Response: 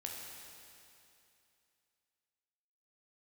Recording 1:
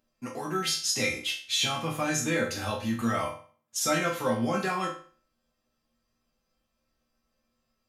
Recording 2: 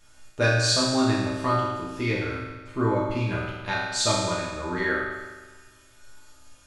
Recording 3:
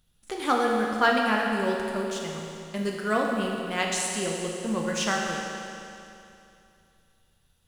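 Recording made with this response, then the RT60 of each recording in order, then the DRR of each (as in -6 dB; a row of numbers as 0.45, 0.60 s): 3; 0.45, 1.3, 2.7 s; -4.5, -8.0, -1.5 dB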